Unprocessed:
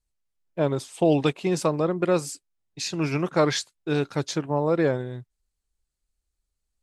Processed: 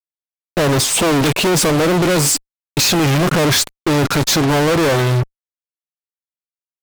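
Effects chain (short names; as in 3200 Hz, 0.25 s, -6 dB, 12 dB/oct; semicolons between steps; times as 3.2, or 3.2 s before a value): 3.06–4.08 low shelf 290 Hz +11 dB; soft clip -14 dBFS, distortion -14 dB; compressor 1.5:1, threshold -39 dBFS, peak gain reduction 8 dB; fuzz box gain 56 dB, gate -54 dBFS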